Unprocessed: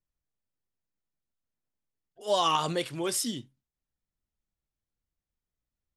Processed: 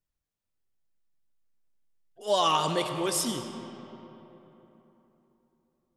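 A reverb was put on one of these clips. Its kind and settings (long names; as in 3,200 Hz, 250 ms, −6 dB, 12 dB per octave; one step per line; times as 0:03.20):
comb and all-pass reverb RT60 3.6 s, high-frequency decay 0.55×, pre-delay 60 ms, DRR 7.5 dB
level +1 dB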